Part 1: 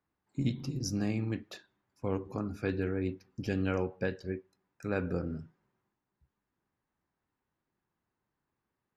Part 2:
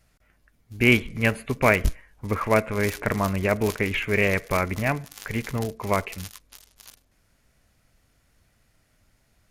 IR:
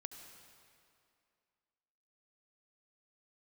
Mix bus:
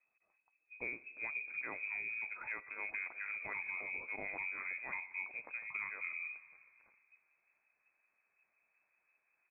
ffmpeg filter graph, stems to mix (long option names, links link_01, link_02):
-filter_complex "[0:a]adelay=900,volume=1dB,asplit=2[link_01][link_02];[link_02]volume=-13.5dB[link_03];[1:a]acrossover=split=1300[link_04][link_05];[link_04]aeval=exprs='val(0)*(1-0.7/2+0.7/2*cos(2*PI*5.6*n/s))':channel_layout=same[link_06];[link_05]aeval=exprs='val(0)*(1-0.7/2-0.7/2*cos(2*PI*5.6*n/s))':channel_layout=same[link_07];[link_06][link_07]amix=inputs=2:normalize=0,volume=-13dB,asplit=2[link_08][link_09];[link_09]apad=whole_len=434944[link_10];[link_01][link_10]sidechaincompress=threshold=-45dB:ratio=8:attack=20:release=119[link_11];[2:a]atrim=start_sample=2205[link_12];[link_03][link_12]afir=irnorm=-1:irlink=0[link_13];[link_11][link_08][link_13]amix=inputs=3:normalize=0,lowpass=frequency=2200:width_type=q:width=0.5098,lowpass=frequency=2200:width_type=q:width=0.6013,lowpass=frequency=2200:width_type=q:width=0.9,lowpass=frequency=2200:width_type=q:width=2.563,afreqshift=-2600,acompressor=threshold=-38dB:ratio=10"